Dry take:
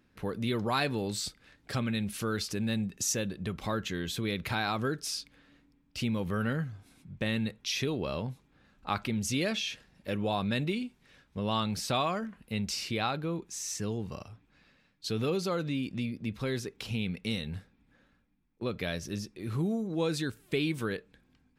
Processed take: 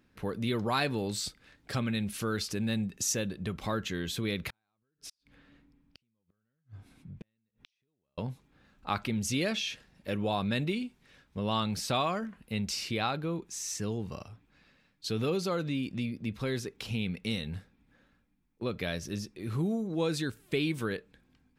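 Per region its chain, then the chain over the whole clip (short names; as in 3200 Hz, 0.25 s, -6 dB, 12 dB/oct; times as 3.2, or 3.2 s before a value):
4.5–8.18 tone controls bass +3 dB, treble -6 dB + compressor 3:1, threshold -41 dBFS + flipped gate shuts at -34 dBFS, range -41 dB
whole clip: dry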